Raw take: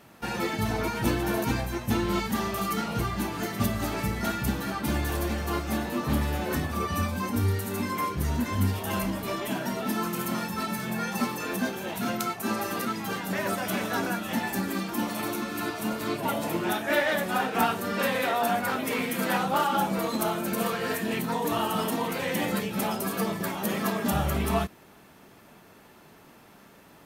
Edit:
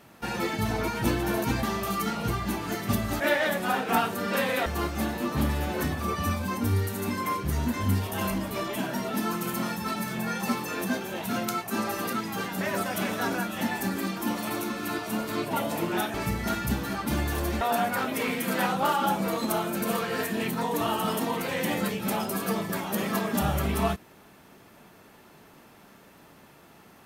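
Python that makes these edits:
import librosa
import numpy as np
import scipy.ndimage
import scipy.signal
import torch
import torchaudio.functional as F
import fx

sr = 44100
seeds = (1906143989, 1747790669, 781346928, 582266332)

y = fx.edit(x, sr, fx.cut(start_s=1.63, length_s=0.71),
    fx.swap(start_s=3.91, length_s=1.47, other_s=16.86, other_length_s=1.46), tone=tone)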